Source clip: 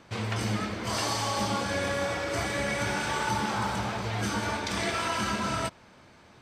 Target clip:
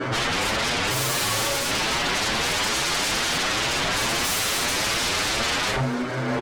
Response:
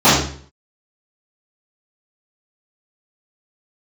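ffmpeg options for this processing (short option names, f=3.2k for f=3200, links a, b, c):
-filter_complex "[0:a]asettb=1/sr,asplit=3[a][b][c];[a]atrim=end=2.364[d];[b]atrim=start=2.36:end=3.1,asetpts=PTS-STARTPTS,afade=t=in:d=0.004:c=qsin,afade=t=out:st=0.736:d=0.004:c=qsin,highpass=f=180:w=0.5412,highpass=f=180:w=1.3066[e];[c]atrim=start=3.096[f];[d][e]acrossfade=d=0.004:c1=hsin:c2=qsin[g];[g][f]acrossfade=d=0.004:c1=qsin:c2=hsin,asettb=1/sr,asplit=3[h][i][j];[h]atrim=end=3.904[k];[i]atrim=start=3.9:end=4.63,asetpts=PTS-STARTPTS,afade=t=in:d=0.004:c=qsin,afade=t=out:st=0.726:d=0.004:c=qsin,equalizer=f=7.2k:w=0.45:g=13.5[l];[j]atrim=start=4.626[m];[k][l]acrossfade=d=0.004:c1=hsin:c2=qsin[n];[n][m]acrossfade=d=0.004:c1=qsin:c2=hsin[o];[1:a]atrim=start_sample=2205,asetrate=79380,aresample=44100[p];[o][p]afir=irnorm=-1:irlink=0,dynaudnorm=f=120:g=11:m=11.5dB,asettb=1/sr,asplit=3[q][r][s];[q]atrim=end=0.904[t];[r]atrim=start=0.9:end=1.71,asetpts=PTS-STARTPTS,afade=t=in:d=0.004:c=qsin,afade=t=out:st=0.806:d=0.004:c=qsin,asoftclip=type=hard:threshold=-14.5dB[u];[s]atrim=start=1.706[v];[t][u]acrossfade=d=0.004:c1=hsin:c2=qsin[w];[w][v]acrossfade=d=0.004:c1=qsin:c2=hsin,aemphasis=mode=reproduction:type=cd,alimiter=limit=-12dB:level=0:latency=1:release=11,aeval=exprs='0.211*sin(PI/2*3.98*val(0)/0.211)':c=same,aecho=1:1:652:0.126,asplit=2[x][y];[y]adelay=7.6,afreqshift=2.3[z];[x][z]amix=inputs=2:normalize=1,volume=-4.5dB"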